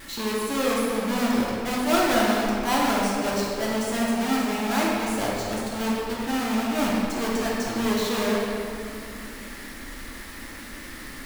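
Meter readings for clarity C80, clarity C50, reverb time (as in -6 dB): 0.0 dB, -2.0 dB, 2.7 s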